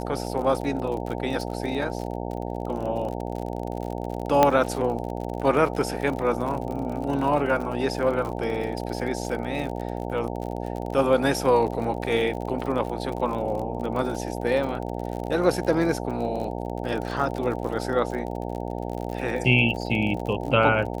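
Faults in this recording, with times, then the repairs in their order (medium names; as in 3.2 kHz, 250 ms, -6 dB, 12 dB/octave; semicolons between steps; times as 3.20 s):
buzz 60 Hz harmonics 15 -31 dBFS
crackle 50 per s -31 dBFS
4.43 s: pop -4 dBFS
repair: de-click; de-hum 60 Hz, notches 15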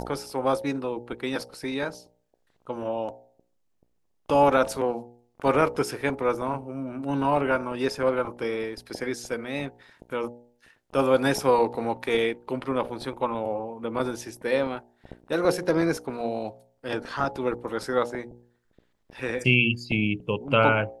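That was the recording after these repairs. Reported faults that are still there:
nothing left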